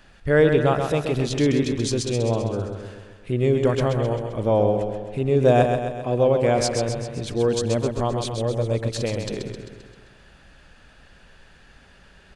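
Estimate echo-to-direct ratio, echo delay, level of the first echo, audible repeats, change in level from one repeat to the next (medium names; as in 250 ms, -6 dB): -4.5 dB, 131 ms, -6.0 dB, 6, -5.0 dB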